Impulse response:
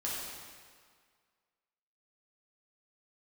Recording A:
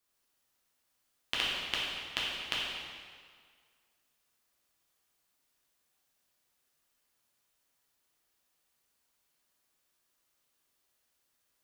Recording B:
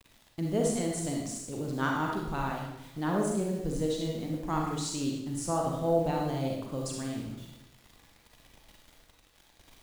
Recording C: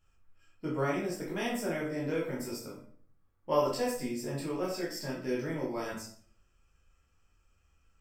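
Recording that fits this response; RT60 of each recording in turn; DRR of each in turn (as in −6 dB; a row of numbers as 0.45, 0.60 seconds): A; 1.8, 0.85, 0.50 seconds; −6.5, −1.0, −5.5 decibels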